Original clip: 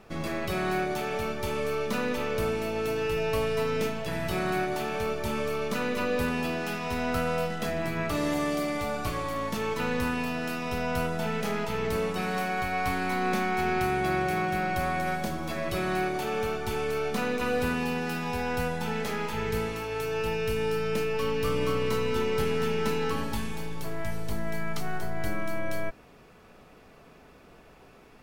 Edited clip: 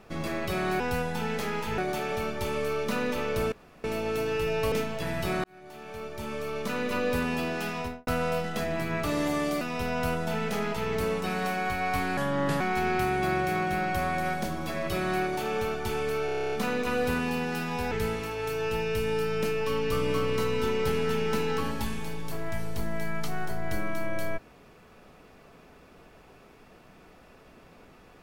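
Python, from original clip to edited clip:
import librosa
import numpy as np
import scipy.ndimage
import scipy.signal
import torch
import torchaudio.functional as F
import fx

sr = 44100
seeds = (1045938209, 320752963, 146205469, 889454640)

y = fx.studio_fade_out(x, sr, start_s=6.82, length_s=0.31)
y = fx.edit(y, sr, fx.insert_room_tone(at_s=2.54, length_s=0.32),
    fx.cut(start_s=3.42, length_s=0.36),
    fx.fade_in_span(start_s=4.5, length_s=1.54),
    fx.cut(start_s=8.67, length_s=1.86),
    fx.speed_span(start_s=13.09, length_s=0.33, speed=0.76),
    fx.stutter(start_s=17.07, slice_s=0.03, count=10),
    fx.move(start_s=18.46, length_s=0.98, to_s=0.8), tone=tone)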